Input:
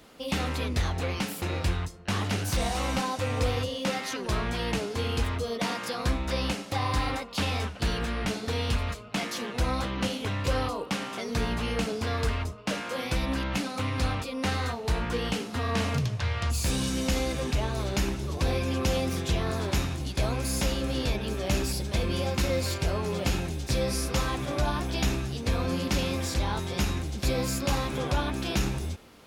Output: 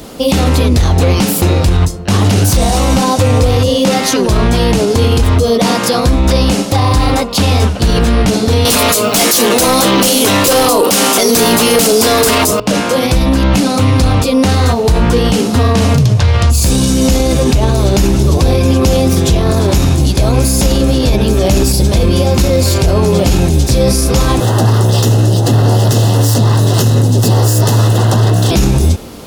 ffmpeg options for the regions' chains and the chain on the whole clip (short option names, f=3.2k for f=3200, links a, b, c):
-filter_complex "[0:a]asettb=1/sr,asplit=3[a][b][c];[a]atrim=end=8.654[d];[b]atrim=start=8.65:end=12.6,asetpts=PTS-STARTPTS,afade=t=in:d=0.004:c=qsin,afade=t=out:st=3.946:d=0.004:c=qsin,highpass=280,aemphasis=mode=production:type=50fm,aeval=exprs='0.224*sin(PI/2*3.55*val(0)/0.224)':c=same[e];[c]atrim=start=12.596[f];[d][e]acrossfade=d=0.004:c1=hsin:c2=qsin[g];[g][f]acrossfade=d=0.004:c1=qsin:c2=hsin,asettb=1/sr,asplit=3[h][i][j];[h]atrim=end=24.404[k];[i]atrim=start=24.4:end=28.51,asetpts=PTS-STARTPTS,afade=t=in:d=0.004:c=qsin,afade=t=out:st=4.106:d=0.004:c=qsin,aeval=exprs='abs(val(0))':c=same,asuperstop=centerf=2200:order=8:qfactor=4.8,afreqshift=110[l];[j]atrim=start=28.506[m];[k][l]acrossfade=d=0.004:c1=hsin:c2=qsin[n];[n][m]acrossfade=d=0.004:c1=qsin:c2=hsin,equalizer=f=1.9k:w=0.62:g=-9.5,alimiter=level_in=26.5dB:limit=-1dB:release=50:level=0:latency=1,volume=-1.5dB"